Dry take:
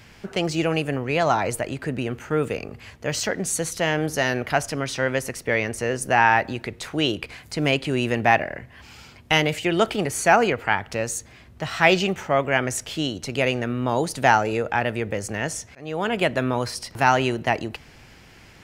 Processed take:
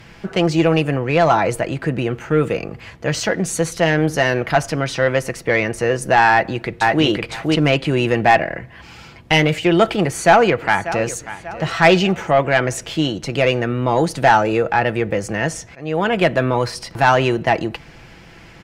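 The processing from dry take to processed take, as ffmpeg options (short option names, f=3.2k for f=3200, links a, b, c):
-filter_complex "[0:a]asplit=2[a][b];[b]afade=t=in:st=6.3:d=0.01,afade=t=out:st=7.04:d=0.01,aecho=0:1:510|1020:0.841395|0.0841395[c];[a][c]amix=inputs=2:normalize=0,asplit=2[d][e];[e]afade=t=in:st=10.03:d=0.01,afade=t=out:st=11.12:d=0.01,aecho=0:1:590|1180|1770|2360:0.158489|0.0713202|0.0320941|0.0144423[f];[d][f]amix=inputs=2:normalize=0,aemphasis=mode=reproduction:type=cd,aecho=1:1:6:0.36,acontrast=88,volume=-1dB"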